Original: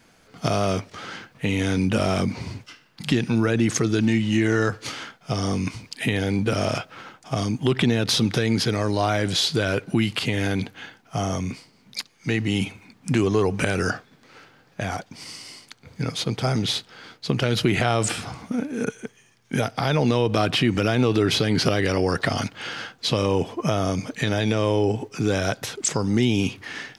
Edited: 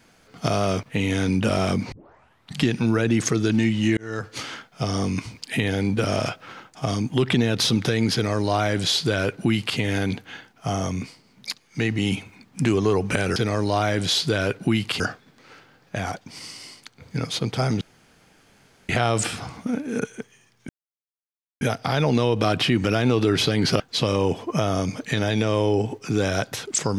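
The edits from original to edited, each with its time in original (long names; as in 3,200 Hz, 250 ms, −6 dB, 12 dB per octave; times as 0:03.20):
0:00.83–0:01.32: remove
0:02.41: tape start 0.67 s
0:04.46–0:04.90: fade in
0:08.63–0:10.27: duplicate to 0:13.85
0:16.66–0:17.74: fill with room tone
0:19.54: splice in silence 0.92 s
0:21.73–0:22.90: remove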